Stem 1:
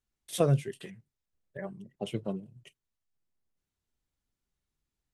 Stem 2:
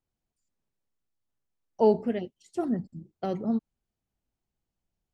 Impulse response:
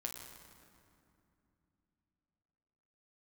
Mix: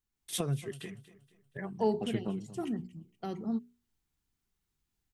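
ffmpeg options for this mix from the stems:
-filter_complex "[0:a]acompressor=threshold=0.0316:ratio=6,volume=0.668,asplit=2[s0][s1];[s1]volume=0.133[s2];[1:a]highshelf=f=8000:g=12,bandreject=f=60:t=h:w=6,bandreject=f=120:t=h:w=6,bandreject=f=180:t=h:w=6,bandreject=f=240:t=h:w=6,bandreject=f=300:t=h:w=6,bandreject=f=360:t=h:w=6,bandreject=f=420:t=h:w=6,volume=0.299[s3];[s2]aecho=0:1:236|472|708|944|1180:1|0.37|0.137|0.0507|0.0187[s4];[s0][s3][s4]amix=inputs=3:normalize=0,equalizer=f=570:w=4.1:g=-12,dynaudnorm=f=120:g=3:m=1.88"

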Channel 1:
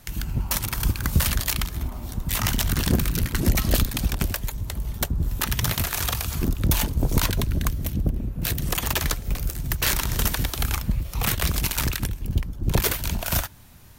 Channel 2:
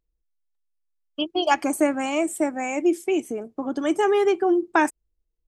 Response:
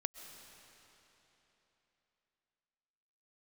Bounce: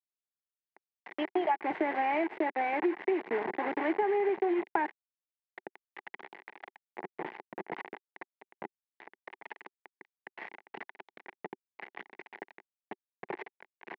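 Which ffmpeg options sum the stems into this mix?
-filter_complex "[0:a]adelay=550,volume=0.188[s0];[1:a]acompressor=threshold=0.02:ratio=1.5,volume=1.26[s1];[s0][s1]amix=inputs=2:normalize=0,acrusher=bits=4:mix=0:aa=0.000001,highpass=f=260:w=0.5412,highpass=f=260:w=1.3066,equalizer=f=270:t=q:w=4:g=-8,equalizer=f=380:t=q:w=4:g=5,equalizer=f=560:t=q:w=4:g=-5,equalizer=f=840:t=q:w=4:g=7,equalizer=f=1300:t=q:w=4:g=-9,equalizer=f=2000:t=q:w=4:g=8,lowpass=f=2100:w=0.5412,lowpass=f=2100:w=1.3066,acompressor=threshold=0.0562:ratio=12"

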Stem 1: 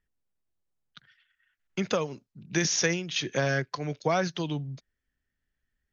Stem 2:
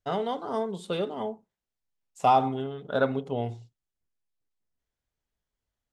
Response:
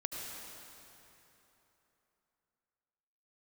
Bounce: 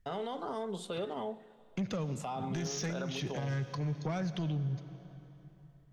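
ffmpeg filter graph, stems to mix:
-filter_complex "[0:a]bass=f=250:g=14,treble=f=4000:g=-2,acompressor=threshold=0.0158:ratio=1.5,asoftclip=type=tanh:threshold=0.0562,volume=0.794,asplit=2[s0][s1];[s1]volume=0.282[s2];[1:a]acrossover=split=460|1400[s3][s4][s5];[s3]acompressor=threshold=0.0126:ratio=4[s6];[s4]acompressor=threshold=0.0178:ratio=4[s7];[s5]acompressor=threshold=0.00794:ratio=4[s8];[s6][s7][s8]amix=inputs=3:normalize=0,volume=1,asplit=2[s9][s10];[s10]volume=0.075[s11];[2:a]atrim=start_sample=2205[s12];[s2][s11]amix=inputs=2:normalize=0[s13];[s13][s12]afir=irnorm=-1:irlink=0[s14];[s0][s9][s14]amix=inputs=3:normalize=0,alimiter=level_in=1.68:limit=0.0631:level=0:latency=1:release=78,volume=0.596"

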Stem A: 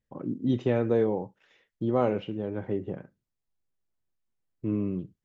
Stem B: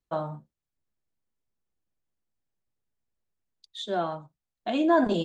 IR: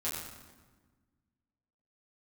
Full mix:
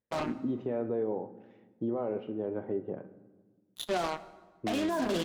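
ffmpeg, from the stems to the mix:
-filter_complex "[0:a]alimiter=limit=0.0794:level=0:latency=1:release=257,bandpass=f=530:t=q:w=0.69:csg=0,volume=1,asplit=2[s0][s1];[s1]volume=0.2[s2];[1:a]highpass=f=180:p=1,acrusher=bits=4:mix=0:aa=0.5,volume=0.944,asplit=2[s3][s4];[s4]volume=0.133[s5];[2:a]atrim=start_sample=2205[s6];[s2][s5]amix=inputs=2:normalize=0[s7];[s7][s6]afir=irnorm=-1:irlink=0[s8];[s0][s3][s8]amix=inputs=3:normalize=0,alimiter=limit=0.0708:level=0:latency=1:release=38"

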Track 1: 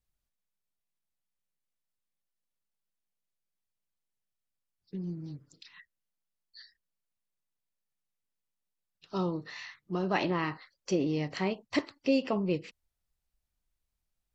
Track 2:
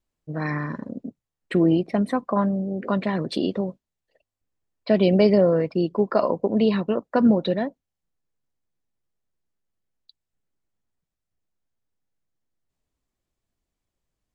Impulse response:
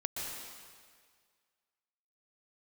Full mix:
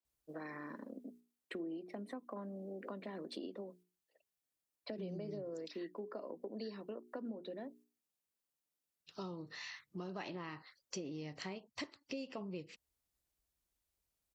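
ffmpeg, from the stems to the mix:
-filter_complex "[0:a]highpass=44,highshelf=f=4900:g=8,adelay=50,volume=1.26[s0];[1:a]highpass=f=250:w=0.5412,highpass=f=250:w=1.3066,bandreject=f=60:t=h:w=6,bandreject=f=120:t=h:w=6,bandreject=f=180:t=h:w=6,bandreject=f=240:t=h:w=6,bandreject=f=300:t=h:w=6,bandreject=f=360:t=h:w=6,bandreject=f=420:t=h:w=6,acrossover=split=440[s1][s2];[s2]acompressor=threshold=0.0178:ratio=3[s3];[s1][s3]amix=inputs=2:normalize=0,volume=0.316,asplit=2[s4][s5];[s5]apad=whole_len=634859[s6];[s0][s6]sidechaingate=range=0.501:threshold=0.00126:ratio=16:detection=peak[s7];[s7][s4]amix=inputs=2:normalize=0,acompressor=threshold=0.00708:ratio=4"

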